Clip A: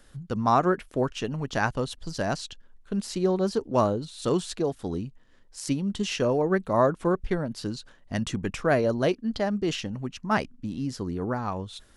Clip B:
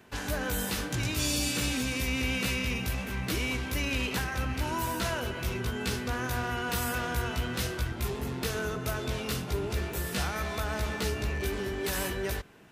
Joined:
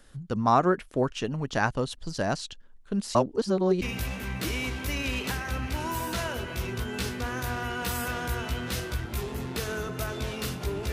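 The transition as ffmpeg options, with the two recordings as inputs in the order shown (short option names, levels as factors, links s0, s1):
-filter_complex "[0:a]apad=whole_dur=10.92,atrim=end=10.92,asplit=2[s0][s1];[s0]atrim=end=3.152[s2];[s1]atrim=start=3.148:end=3.822,asetpts=PTS-STARTPTS,areverse[s3];[1:a]atrim=start=2.688:end=9.79[s4];[s2][s3]acrossfade=d=0.004:c1=hsin:c2=hsin[s5];[s5][s4]acrossfade=d=0.004:c1=hsin:c2=hsin"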